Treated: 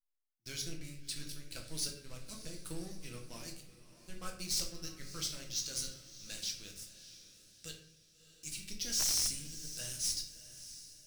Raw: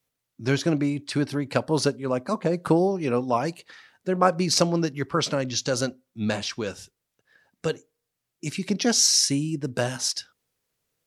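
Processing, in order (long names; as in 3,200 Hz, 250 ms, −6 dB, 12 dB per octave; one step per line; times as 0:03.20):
first-order pre-emphasis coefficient 0.97
leveller curve on the samples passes 5
guitar amp tone stack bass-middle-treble 10-0-1
notch filter 7,100 Hz, Q 29
feedback delay with all-pass diffusion 642 ms, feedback 43%, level −14 dB
rectangular room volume 86 cubic metres, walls mixed, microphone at 0.68 metres
wrap-around overflow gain 23 dB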